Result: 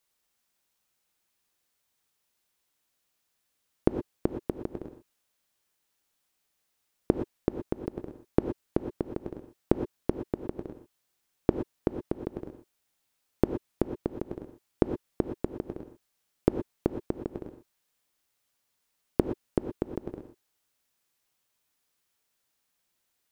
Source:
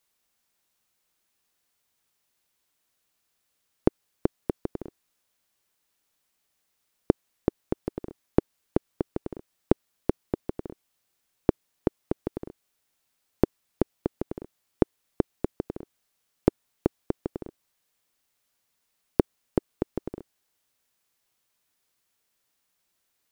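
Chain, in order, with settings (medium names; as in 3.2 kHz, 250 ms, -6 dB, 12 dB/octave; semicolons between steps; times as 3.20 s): gated-style reverb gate 140 ms rising, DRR 7 dB; trim -2.5 dB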